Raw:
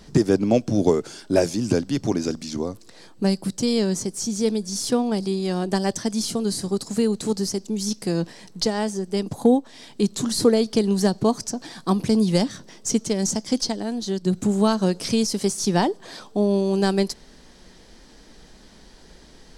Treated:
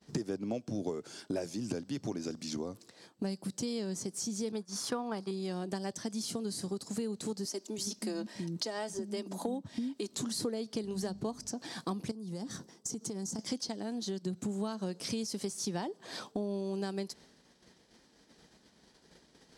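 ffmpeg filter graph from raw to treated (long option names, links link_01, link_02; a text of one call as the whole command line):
ffmpeg -i in.wav -filter_complex "[0:a]asettb=1/sr,asplit=3[link_01][link_02][link_03];[link_01]atrim=end=4.524[link_04];[link_02]atrim=start=4.52:end=5.31,asetpts=PTS-STARTPTS,afade=type=in:duration=0.004:curve=qsin,afade=type=out:start_time=0.786:duration=0.004:curve=qsin,bandreject=frequency=7800:width=18,agate=range=-33dB:threshold=-25dB:ratio=3:release=100:detection=peak,equalizer=frequency=1200:width_type=o:width=1.6:gain=14[link_05];[link_03]atrim=start=5.306[link_06];[link_04][link_05]acrossfade=duration=0.004:curve1=hsin:curve2=qsin[link_07];[link_07][link_06]acrossfade=duration=0.004:curve1=qsin:curve2=hsin,asettb=1/sr,asplit=3[link_08][link_09][link_10];[link_08]atrim=end=7.454[link_11];[link_09]atrim=start=7.45:end=10.15,asetpts=PTS-STARTPTS,afade=type=in:duration=0.004:curve=qsin,afade=type=out:start_time=2.696:duration=0.004:curve=qsin,aecho=1:1:3.2:0.39,atrim=end_sample=119070,acrossover=split=250[link_12][link_13];[link_12]adelay=330[link_14];[link_14][link_13]amix=inputs=2:normalize=0,atrim=end_sample=119070[link_15];[link_10]atrim=start=10.146[link_16];[link_11][link_15]acrossfade=duration=0.004:curve1=hsin:curve2=qsin[link_17];[link_17][link_16]acrossfade=duration=0.004:curve1=qsin:curve2=hsin,asettb=1/sr,asplit=3[link_18][link_19][link_20];[link_18]atrim=end=10.834[link_21];[link_19]atrim=start=10.83:end=11.49,asetpts=PTS-STARTPTS,afade=type=in:duration=0.004:curve=qsin,afade=type=out:start_time=0.656:duration=0.004:curve=qsin,bandreject=frequency=50:width_type=h:width=6,bandreject=frequency=100:width_type=h:width=6,bandreject=frequency=150:width_type=h:width=6,bandreject=frequency=200:width_type=h:width=6,bandreject=frequency=250:width_type=h:width=6,bandreject=frequency=300:width_type=h:width=6,aeval=exprs='val(0)+0.0126*(sin(2*PI*50*n/s)+sin(2*PI*2*50*n/s)/2+sin(2*PI*3*50*n/s)/3+sin(2*PI*4*50*n/s)/4+sin(2*PI*5*50*n/s)/5)':channel_layout=same[link_22];[link_20]atrim=start=11.486[link_23];[link_21][link_22]acrossfade=duration=0.004:curve1=hsin:curve2=qsin[link_24];[link_24][link_23]acrossfade=duration=0.004:curve1=qsin:curve2=hsin,asettb=1/sr,asplit=3[link_25][link_26][link_27];[link_25]atrim=end=12.114[link_28];[link_26]atrim=start=12.11:end=13.39,asetpts=PTS-STARTPTS,afade=type=in:duration=0.004:curve=qsin,afade=type=out:start_time=1.276:duration=0.004:curve=qsin,equalizer=frequency=2600:width_type=o:width=1.4:gain=-9.5,bandreject=frequency=600:width=6,acompressor=threshold=-29dB:ratio=10:attack=3.2:release=140:knee=1:detection=peak[link_29];[link_27]atrim=start=13.386[link_30];[link_28][link_29]acrossfade=duration=0.004:curve1=hsin:curve2=qsin[link_31];[link_31][link_30]acrossfade=duration=0.004:curve1=qsin:curve2=hsin,agate=range=-33dB:threshold=-38dB:ratio=3:detection=peak,highpass=98,acompressor=threshold=-36dB:ratio=4" out.wav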